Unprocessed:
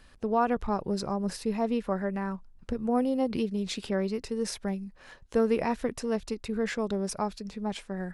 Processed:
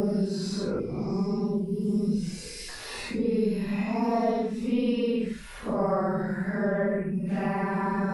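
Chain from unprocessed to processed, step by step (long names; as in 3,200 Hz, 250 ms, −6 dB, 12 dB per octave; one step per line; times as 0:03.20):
extreme stretch with random phases 5.9×, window 0.05 s, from 0:00.91
gain on a spectral selection 0:00.80–0:02.69, 510–2,000 Hz −16 dB
multiband upward and downward compressor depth 70%
level +2 dB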